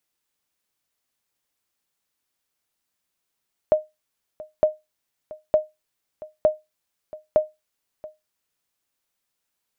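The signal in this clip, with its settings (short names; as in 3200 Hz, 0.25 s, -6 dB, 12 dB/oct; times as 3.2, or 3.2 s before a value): sonar ping 617 Hz, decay 0.20 s, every 0.91 s, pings 5, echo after 0.68 s, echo -20 dB -8.5 dBFS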